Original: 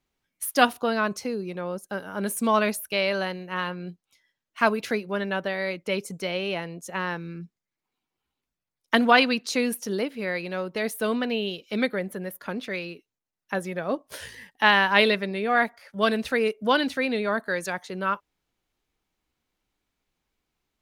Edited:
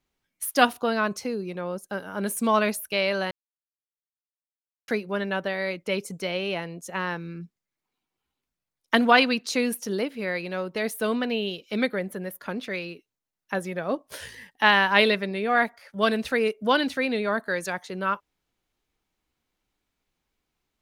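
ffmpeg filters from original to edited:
-filter_complex "[0:a]asplit=3[s0][s1][s2];[s0]atrim=end=3.31,asetpts=PTS-STARTPTS,afade=t=out:st=3.306:d=0.004:c=hsin[s3];[s1]atrim=start=3.31:end=4.88,asetpts=PTS-STARTPTS,volume=0[s4];[s2]atrim=start=4.88,asetpts=PTS-STARTPTS,afade=t=in:d=0.004:c=hsin[s5];[s3][s4][s5]concat=n=3:v=0:a=1"

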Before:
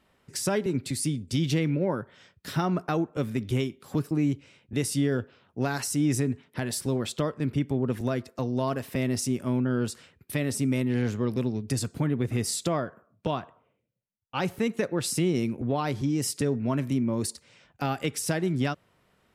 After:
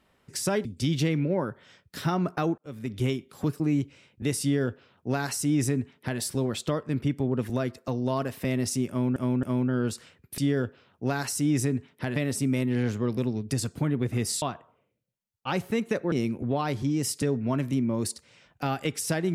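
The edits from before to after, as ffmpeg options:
-filter_complex "[0:a]asplit=9[s0][s1][s2][s3][s4][s5][s6][s7][s8];[s0]atrim=end=0.652[s9];[s1]atrim=start=1.158:end=3.09,asetpts=PTS-STARTPTS,afade=t=out:st=1.928:d=0.004:c=hsin[s10];[s2]atrim=start=3.09:end=9.672,asetpts=PTS-STARTPTS,afade=t=in:d=0.45[s11];[s3]atrim=start=9.398:end=9.672[s12];[s4]atrim=start=9.398:end=10.352[s13];[s5]atrim=start=4.928:end=6.712[s14];[s6]atrim=start=10.348:end=12.612[s15];[s7]atrim=start=13.298:end=15.002[s16];[s8]atrim=start=15.308[s17];[s10][s11]concat=n=2:v=0:a=1[s18];[s9][s18]acrossfade=d=0.004:c1=hsin:c2=hsin[s19];[s19][s12]acrossfade=d=0.004:c1=hsin:c2=hsin[s20];[s20][s13]acrossfade=d=0.004:c1=hsin:c2=hsin[s21];[s21][s14]acrossfade=d=0.004:c1=hsin:c2=hsin[s22];[s22][s15]acrossfade=d=0.004:c1=hsin:c2=hsin[s23];[s23][s16]acrossfade=d=0.004:c1=hsin:c2=hsin[s24];[s24][s17]acrossfade=d=0.004:c1=hsin:c2=hsin"

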